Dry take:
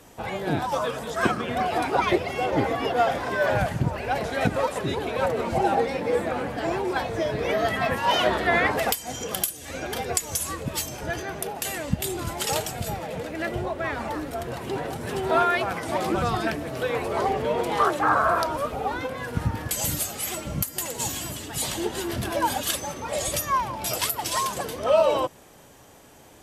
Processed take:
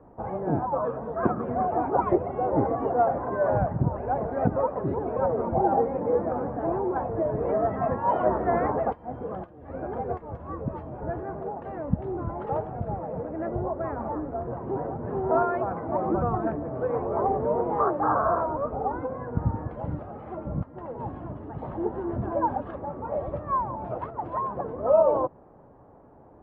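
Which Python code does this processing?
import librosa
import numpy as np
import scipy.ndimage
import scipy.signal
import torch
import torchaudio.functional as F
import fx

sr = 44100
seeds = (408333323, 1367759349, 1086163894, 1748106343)

y = scipy.signal.sosfilt(scipy.signal.butter(4, 1100.0, 'lowpass', fs=sr, output='sos'), x)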